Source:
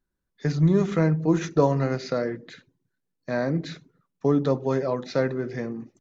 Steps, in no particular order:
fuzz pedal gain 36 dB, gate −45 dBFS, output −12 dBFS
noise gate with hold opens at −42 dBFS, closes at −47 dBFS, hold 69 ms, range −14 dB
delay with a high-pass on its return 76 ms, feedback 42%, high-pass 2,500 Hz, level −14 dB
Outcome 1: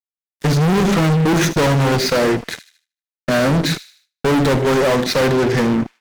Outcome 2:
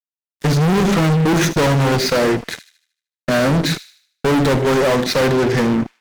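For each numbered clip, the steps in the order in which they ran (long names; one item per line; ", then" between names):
fuzz pedal, then delay with a high-pass on its return, then noise gate with hold
fuzz pedal, then noise gate with hold, then delay with a high-pass on its return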